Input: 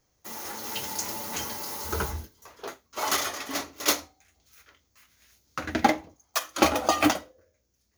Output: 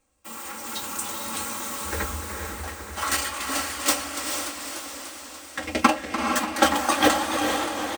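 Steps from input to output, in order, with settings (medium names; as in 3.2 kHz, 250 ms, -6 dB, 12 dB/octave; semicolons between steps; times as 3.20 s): comb 3.7 ms, depth 72%; formant shift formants +5 st; on a send: echo that smears into a reverb 454 ms, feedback 51%, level -4.5 dB; on the sum: modulated delay 291 ms, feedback 70%, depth 135 cents, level -11.5 dB; trim -1 dB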